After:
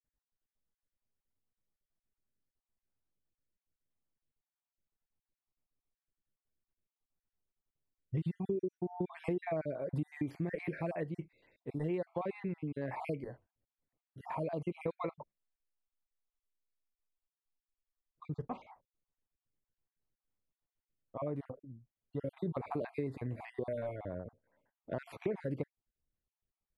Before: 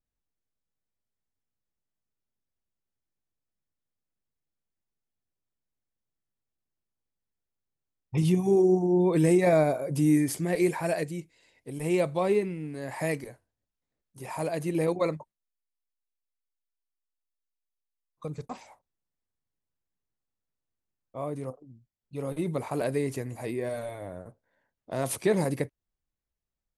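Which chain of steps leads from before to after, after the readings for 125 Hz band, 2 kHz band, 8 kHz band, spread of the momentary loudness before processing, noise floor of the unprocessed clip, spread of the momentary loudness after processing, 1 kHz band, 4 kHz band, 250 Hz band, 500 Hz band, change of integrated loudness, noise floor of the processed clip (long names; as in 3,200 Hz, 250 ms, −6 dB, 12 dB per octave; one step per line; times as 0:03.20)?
−9.5 dB, −11.5 dB, below −30 dB, 19 LU, below −85 dBFS, 13 LU, −9.0 dB, below −15 dB, −12.0 dB, −12.0 dB, −12.5 dB, below −85 dBFS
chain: time-frequency cells dropped at random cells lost 40%
bass and treble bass 0 dB, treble +3 dB
downward compressor 6 to 1, threshold −33 dBFS, peak gain reduction 14.5 dB
high-frequency loss of the air 480 metres
level +1 dB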